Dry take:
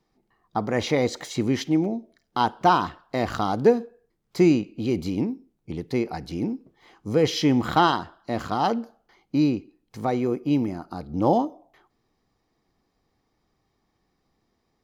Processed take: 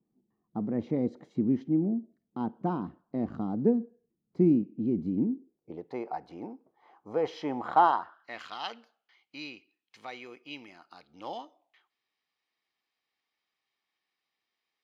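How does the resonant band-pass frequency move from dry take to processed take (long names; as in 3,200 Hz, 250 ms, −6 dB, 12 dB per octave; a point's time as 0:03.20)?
resonant band-pass, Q 1.9
0:05.19 220 Hz
0:05.94 820 Hz
0:07.90 820 Hz
0:08.45 2,800 Hz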